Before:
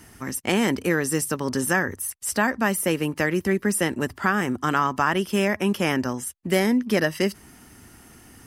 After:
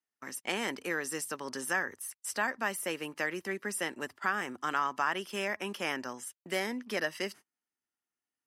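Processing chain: gate -35 dBFS, range -35 dB; weighting filter A; gain -8.5 dB

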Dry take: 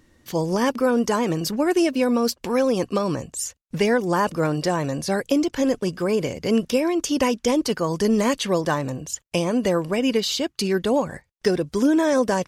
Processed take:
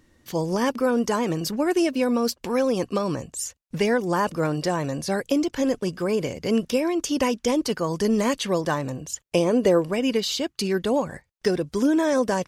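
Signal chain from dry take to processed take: 9.25–9.84 bell 430 Hz +7.5 dB 0.96 oct; gain -2 dB

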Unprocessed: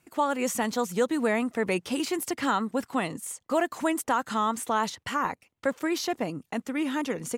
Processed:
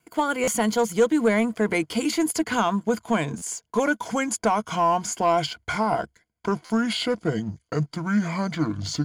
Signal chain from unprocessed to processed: speed glide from 102% -> 61%; ripple EQ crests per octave 1.8, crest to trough 10 dB; sample leveller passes 1; vibrato 1 Hz 9.5 cents; stuck buffer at 0.43/3.37/6.65, samples 512, times 3

